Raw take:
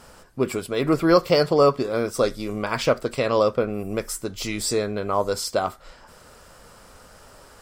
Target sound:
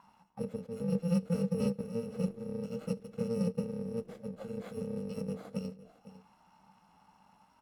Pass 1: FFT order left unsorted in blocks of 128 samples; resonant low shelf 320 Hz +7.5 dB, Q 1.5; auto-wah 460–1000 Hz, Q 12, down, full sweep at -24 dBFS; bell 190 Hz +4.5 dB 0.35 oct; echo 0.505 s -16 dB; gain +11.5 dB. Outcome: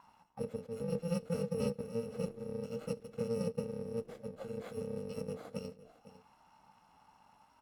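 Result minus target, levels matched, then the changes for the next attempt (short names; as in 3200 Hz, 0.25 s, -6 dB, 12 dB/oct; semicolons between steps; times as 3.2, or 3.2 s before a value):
250 Hz band -3.0 dB
change: bell 190 Hz +14 dB 0.35 oct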